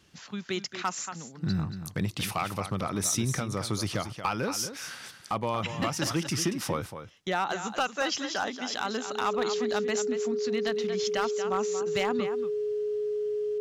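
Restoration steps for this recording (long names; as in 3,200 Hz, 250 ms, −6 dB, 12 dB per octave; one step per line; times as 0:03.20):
clipped peaks rebuilt −19.5 dBFS
notch filter 420 Hz, Q 30
echo removal 231 ms −10.5 dB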